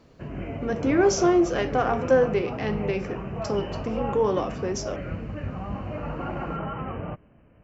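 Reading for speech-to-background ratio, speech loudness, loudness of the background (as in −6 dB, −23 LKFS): 8.0 dB, −25.0 LKFS, −33.0 LKFS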